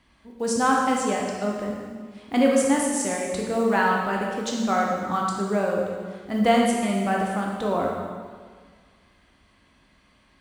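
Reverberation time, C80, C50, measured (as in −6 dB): 1.7 s, 2.5 dB, 1.0 dB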